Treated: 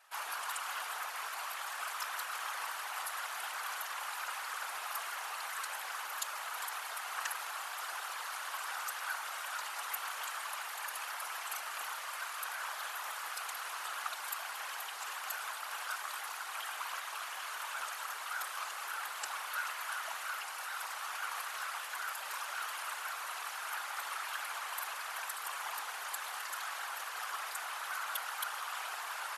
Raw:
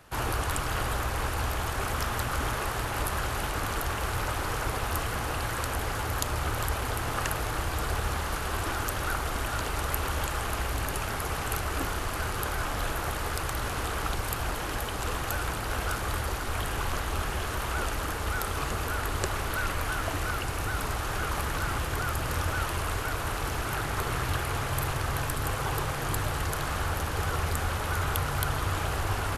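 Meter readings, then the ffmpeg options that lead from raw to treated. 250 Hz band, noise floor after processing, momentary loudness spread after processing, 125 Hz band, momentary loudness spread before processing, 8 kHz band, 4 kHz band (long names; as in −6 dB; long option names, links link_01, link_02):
below −35 dB, −43 dBFS, 2 LU, below −40 dB, 2 LU, −6.0 dB, −6.0 dB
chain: -af "highpass=frequency=840:width=0.5412,highpass=frequency=840:width=1.3066,afftfilt=real='hypot(re,im)*cos(2*PI*random(0))':imag='hypot(re,im)*sin(2*PI*random(1))':win_size=512:overlap=0.75"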